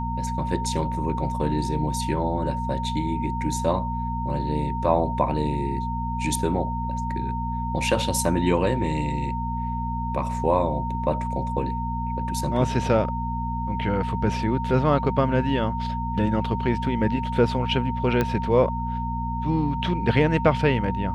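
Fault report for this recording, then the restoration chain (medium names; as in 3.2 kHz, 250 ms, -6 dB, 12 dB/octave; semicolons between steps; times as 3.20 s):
hum 60 Hz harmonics 4 -29 dBFS
whine 920 Hz -29 dBFS
18.21 s: pop -10 dBFS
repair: de-click; de-hum 60 Hz, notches 4; band-stop 920 Hz, Q 30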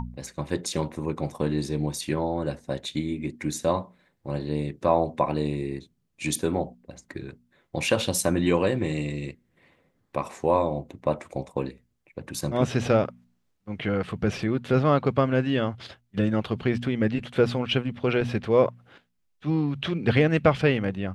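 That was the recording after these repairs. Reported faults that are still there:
nothing left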